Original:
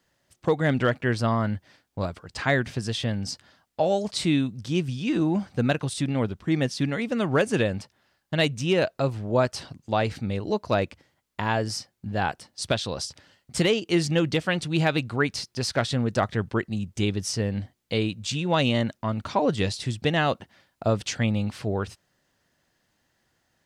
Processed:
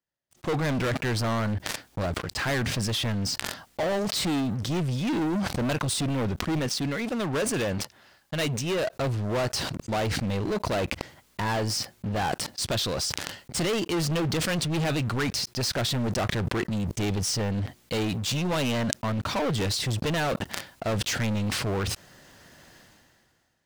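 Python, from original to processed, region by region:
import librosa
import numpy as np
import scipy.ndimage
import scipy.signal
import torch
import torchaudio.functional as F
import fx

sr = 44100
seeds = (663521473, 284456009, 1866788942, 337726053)

y = fx.chain(x, sr, fx.low_shelf(hz=340.0, db=-4.0),
    fx.upward_expand(threshold_db=-33.0, expansion=1.5), at=(6.59, 8.93))
y = fx.leveller(y, sr, passes=5)
y = fx.sustainer(y, sr, db_per_s=27.0)
y = y * librosa.db_to_amplitude(-12.0)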